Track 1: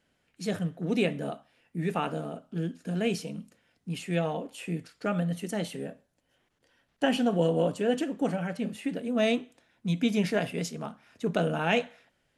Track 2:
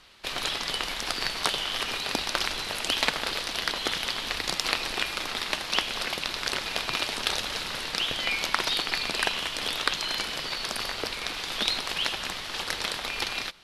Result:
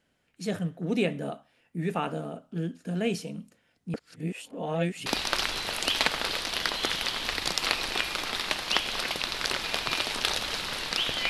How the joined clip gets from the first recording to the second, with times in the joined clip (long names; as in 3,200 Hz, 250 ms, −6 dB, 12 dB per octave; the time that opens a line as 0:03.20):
track 1
0:03.94–0:05.06: reverse
0:05.06: continue with track 2 from 0:02.08